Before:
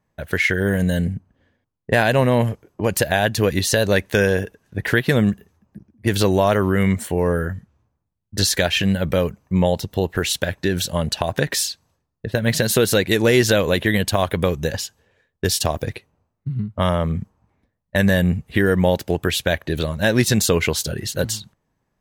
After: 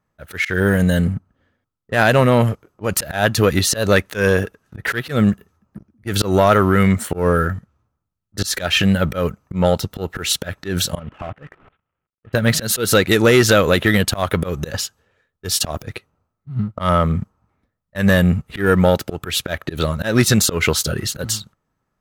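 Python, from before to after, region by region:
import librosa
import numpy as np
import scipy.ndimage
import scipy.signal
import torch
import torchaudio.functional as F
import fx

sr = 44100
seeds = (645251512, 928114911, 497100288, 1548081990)

y = fx.chain(x, sr, fx.cvsd(bps=16000),
    fx.level_steps(step_db=16), at=(10.99, 12.33))
y = fx.leveller(y, sr, passes=1)
y = fx.peak_eq(y, sr, hz=1300.0, db=13.0, octaves=0.2)
y = fx.auto_swell(y, sr, attack_ms=134.0)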